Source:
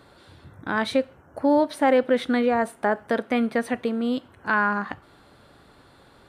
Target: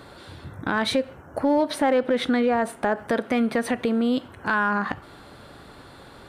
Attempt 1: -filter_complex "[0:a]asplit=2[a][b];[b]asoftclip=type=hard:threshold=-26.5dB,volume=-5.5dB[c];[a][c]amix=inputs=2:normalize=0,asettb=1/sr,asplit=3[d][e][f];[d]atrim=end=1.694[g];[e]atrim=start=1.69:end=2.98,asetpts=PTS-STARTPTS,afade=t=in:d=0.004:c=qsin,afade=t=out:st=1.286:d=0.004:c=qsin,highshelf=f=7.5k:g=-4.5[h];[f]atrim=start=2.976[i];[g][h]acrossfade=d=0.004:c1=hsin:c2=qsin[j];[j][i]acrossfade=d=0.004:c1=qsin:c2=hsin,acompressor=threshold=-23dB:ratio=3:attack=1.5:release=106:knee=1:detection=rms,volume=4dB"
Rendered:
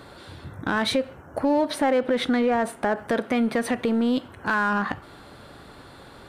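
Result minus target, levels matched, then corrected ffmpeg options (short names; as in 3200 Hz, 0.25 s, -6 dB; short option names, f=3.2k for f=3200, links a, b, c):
hard clip: distortion +11 dB
-filter_complex "[0:a]asplit=2[a][b];[b]asoftclip=type=hard:threshold=-15.5dB,volume=-5.5dB[c];[a][c]amix=inputs=2:normalize=0,asettb=1/sr,asplit=3[d][e][f];[d]atrim=end=1.694[g];[e]atrim=start=1.69:end=2.98,asetpts=PTS-STARTPTS,afade=t=in:d=0.004:c=qsin,afade=t=out:st=1.286:d=0.004:c=qsin,highshelf=f=7.5k:g=-4.5[h];[f]atrim=start=2.976[i];[g][h]acrossfade=d=0.004:c1=hsin:c2=qsin[j];[j][i]acrossfade=d=0.004:c1=qsin:c2=hsin,acompressor=threshold=-23dB:ratio=3:attack=1.5:release=106:knee=1:detection=rms,volume=4dB"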